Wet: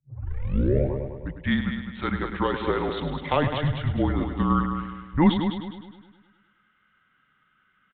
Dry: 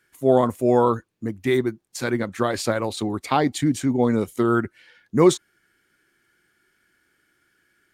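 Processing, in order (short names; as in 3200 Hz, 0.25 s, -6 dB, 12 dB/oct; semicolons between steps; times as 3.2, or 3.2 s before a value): tape start at the beginning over 1.30 s; HPF 390 Hz 6 dB/oct; notch 830 Hz, Q 12; on a send: multi-head echo 0.103 s, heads first and second, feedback 44%, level -10 dB; on the sum: frequency shift -160 Hz; downsampling 8000 Hz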